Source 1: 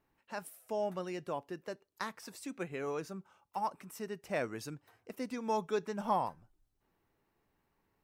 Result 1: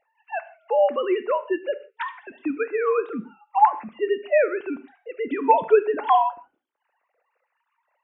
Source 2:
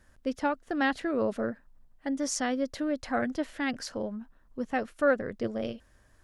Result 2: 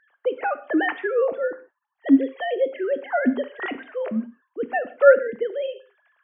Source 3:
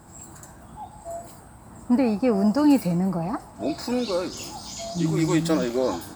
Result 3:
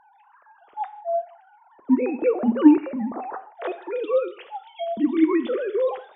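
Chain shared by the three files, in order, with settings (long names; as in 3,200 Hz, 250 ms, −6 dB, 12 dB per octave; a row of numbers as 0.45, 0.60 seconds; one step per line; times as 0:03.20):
three sine waves on the formant tracks
reverb whose tail is shaped and stops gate 190 ms falling, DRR 11 dB
loudness normalisation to −23 LKFS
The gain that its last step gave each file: +15.0, +8.0, +1.0 decibels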